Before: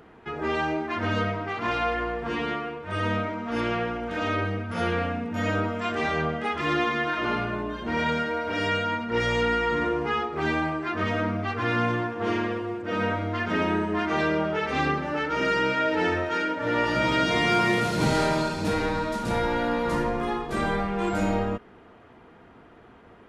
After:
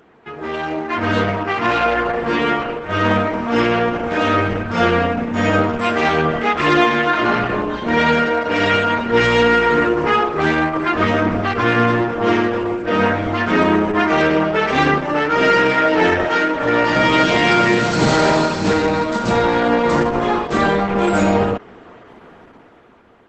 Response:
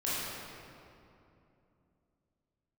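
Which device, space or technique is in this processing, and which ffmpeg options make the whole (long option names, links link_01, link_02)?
video call: -af "highpass=frequency=140:poles=1,dynaudnorm=framelen=170:gausssize=11:maxgain=10.5dB,volume=2dB" -ar 48000 -c:a libopus -b:a 12k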